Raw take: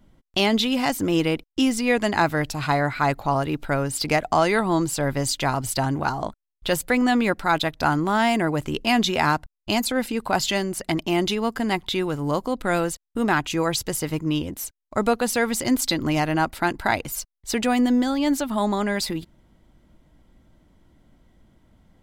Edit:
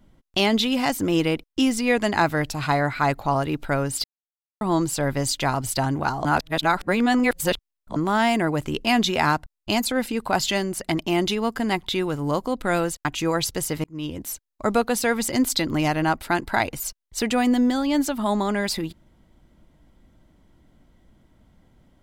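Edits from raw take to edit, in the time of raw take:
4.04–4.61 s: mute
6.25–7.96 s: reverse
13.05–13.37 s: delete
14.16–14.56 s: fade in

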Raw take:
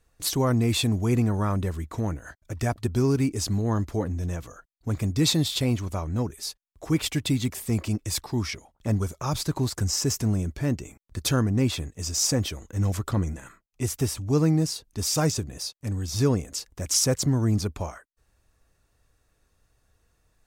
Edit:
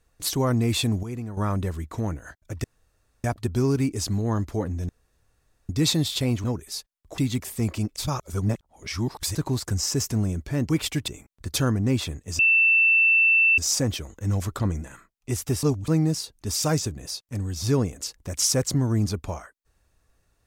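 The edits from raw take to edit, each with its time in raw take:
1.03–1.37 s: gain -10.5 dB
2.64 s: insert room tone 0.60 s
4.29–5.09 s: room tone
5.84–6.15 s: delete
6.89–7.28 s: move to 10.79 s
8.06–9.45 s: reverse
12.10 s: add tone 2.67 kHz -15 dBFS 1.19 s
14.15–14.40 s: reverse

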